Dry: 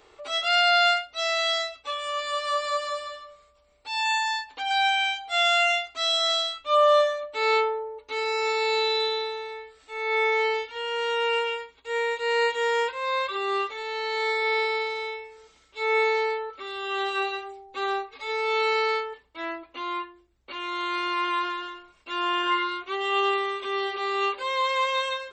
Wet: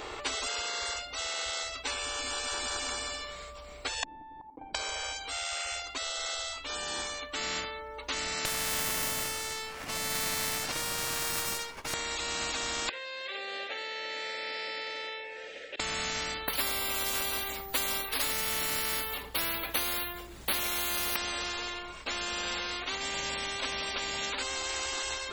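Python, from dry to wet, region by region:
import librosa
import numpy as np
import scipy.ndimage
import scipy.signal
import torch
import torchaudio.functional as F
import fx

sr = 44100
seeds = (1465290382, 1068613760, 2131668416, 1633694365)

y = fx.chain(x, sr, fx.block_float(bits=3),
    fx.formant_cascade(vowel='u'),
    fx.level_steps(step_db=12), at=(4.03, 4.75))
y = fx.chain(y, sr, fx.low_shelf(hz=400.0, db=-10.0),
    fx.running_max(window=9), at=(8.45, 11.94))
y = fx.chain(y, sr, fx.vowel_filter(vowel='e'),
    fx.auto_swell(attack_ms=147.0),
    fx.band_squash(depth_pct=40), at=(12.89, 15.8))
y = fx.chain(y, sr, fx.resample_bad(factor=3, down='none', up='hold'),
    fx.band_squash(depth_pct=70), at=(16.48, 21.16))
y = fx.rider(y, sr, range_db=10, speed_s=2.0)
y = fx.spectral_comp(y, sr, ratio=10.0)
y = y * librosa.db_to_amplitude(-5.0)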